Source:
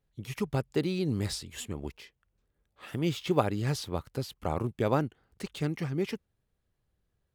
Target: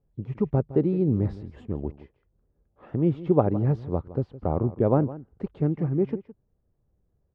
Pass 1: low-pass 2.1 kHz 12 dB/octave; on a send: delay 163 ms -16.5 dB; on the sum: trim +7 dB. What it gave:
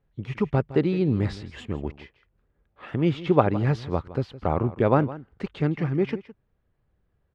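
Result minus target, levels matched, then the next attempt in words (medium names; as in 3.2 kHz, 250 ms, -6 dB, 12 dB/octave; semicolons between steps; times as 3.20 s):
2 kHz band +14.0 dB
low-pass 690 Hz 12 dB/octave; on a send: delay 163 ms -16.5 dB; on the sum: trim +7 dB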